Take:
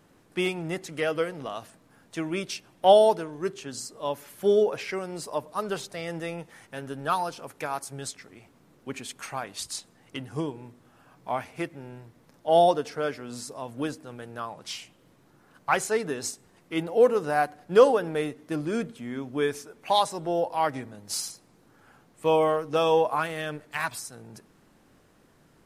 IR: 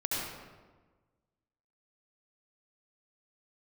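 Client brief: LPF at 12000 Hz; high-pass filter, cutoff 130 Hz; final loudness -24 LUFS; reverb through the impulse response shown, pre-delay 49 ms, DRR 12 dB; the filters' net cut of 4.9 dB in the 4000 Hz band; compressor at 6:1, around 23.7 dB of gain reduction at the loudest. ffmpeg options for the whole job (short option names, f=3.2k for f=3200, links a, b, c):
-filter_complex "[0:a]highpass=130,lowpass=12k,equalizer=f=4k:t=o:g=-6.5,acompressor=threshold=-39dB:ratio=6,asplit=2[a][b];[1:a]atrim=start_sample=2205,adelay=49[c];[b][c]afir=irnorm=-1:irlink=0,volume=-18.5dB[d];[a][d]amix=inputs=2:normalize=0,volume=19dB"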